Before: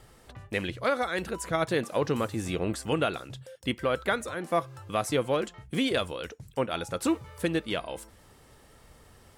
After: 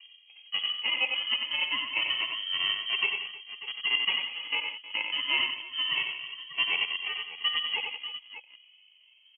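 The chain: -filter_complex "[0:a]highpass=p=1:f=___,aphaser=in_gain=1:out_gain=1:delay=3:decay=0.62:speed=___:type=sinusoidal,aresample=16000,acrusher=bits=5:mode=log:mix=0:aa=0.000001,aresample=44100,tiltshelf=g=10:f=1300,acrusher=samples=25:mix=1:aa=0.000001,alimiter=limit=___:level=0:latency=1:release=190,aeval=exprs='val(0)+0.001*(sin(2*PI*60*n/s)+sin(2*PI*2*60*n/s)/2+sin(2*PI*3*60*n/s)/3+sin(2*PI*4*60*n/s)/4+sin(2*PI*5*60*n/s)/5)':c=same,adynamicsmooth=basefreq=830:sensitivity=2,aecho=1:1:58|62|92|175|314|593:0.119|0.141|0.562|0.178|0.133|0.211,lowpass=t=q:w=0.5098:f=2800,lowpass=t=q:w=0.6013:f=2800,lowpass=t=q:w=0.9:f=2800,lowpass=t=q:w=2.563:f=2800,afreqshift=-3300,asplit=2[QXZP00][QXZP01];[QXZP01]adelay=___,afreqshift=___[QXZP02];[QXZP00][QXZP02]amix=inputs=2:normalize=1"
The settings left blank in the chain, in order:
650, 0.74, -15dB, 2.1, 0.27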